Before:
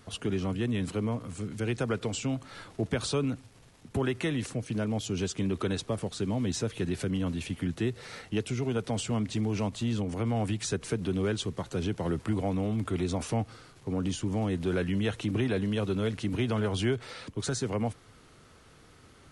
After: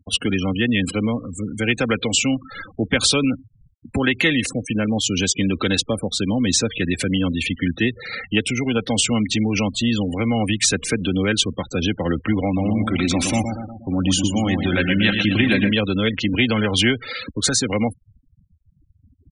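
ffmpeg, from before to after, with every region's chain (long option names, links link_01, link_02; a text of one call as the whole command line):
ffmpeg -i in.wav -filter_complex "[0:a]asettb=1/sr,asplit=3[link_01][link_02][link_03];[link_01]atrim=end=12.454[link_04];[link_02]atrim=start=12.45:end=15.72,asetpts=PTS-STARTPTS,afade=type=in:duration=0.004:curve=qsin,afade=type=out:start_time=3.266:duration=0.004:curve=qsin,bandreject=frequency=460:width=5.2,aecho=1:1:118|236|354|472|590|708|826:0.501|0.271|0.146|0.0789|0.0426|0.023|0.0124,atrim=end_sample=144207[link_05];[link_03]atrim=start=15.716[link_06];[link_04][link_05]acrossfade=duration=0.004:curve1=hsin:curve2=qsin[link_07];[link_07][link_06]acrossfade=duration=0.004:curve1=qsin:curve2=hsin,afftfilt=real='re*gte(hypot(re,im),0.01)':imag='im*gte(hypot(re,im),0.01)':win_size=1024:overlap=0.75,highshelf=frequency=1500:width_type=q:width=1.5:gain=7.5,aecho=1:1:3.8:0.43,volume=9dB" out.wav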